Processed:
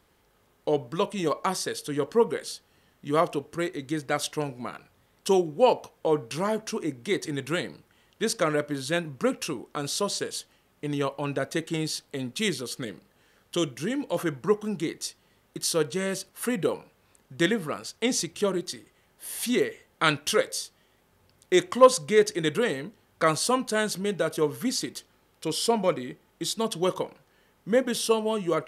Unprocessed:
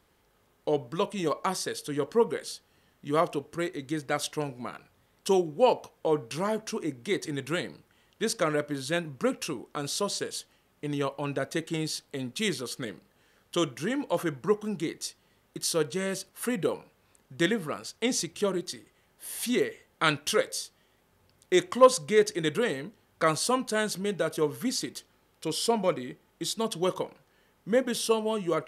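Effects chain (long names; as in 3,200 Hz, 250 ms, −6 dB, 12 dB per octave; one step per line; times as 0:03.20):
0:12.49–0:14.16: dynamic equaliser 1,100 Hz, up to −7 dB, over −43 dBFS, Q 0.84
level +2 dB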